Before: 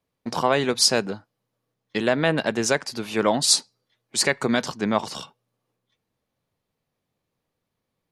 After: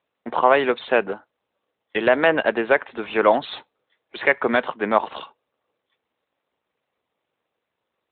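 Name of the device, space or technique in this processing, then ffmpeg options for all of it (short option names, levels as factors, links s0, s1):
telephone: -af "highpass=400,lowpass=3000,volume=2.11" -ar 8000 -c:a libopencore_amrnb -b:a 12200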